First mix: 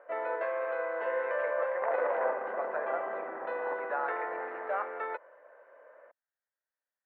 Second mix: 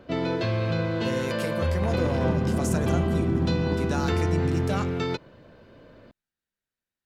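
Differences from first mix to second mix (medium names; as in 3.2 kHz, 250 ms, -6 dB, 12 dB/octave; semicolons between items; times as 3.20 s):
second sound -5.5 dB; master: remove elliptic band-pass 530–1900 Hz, stop band 60 dB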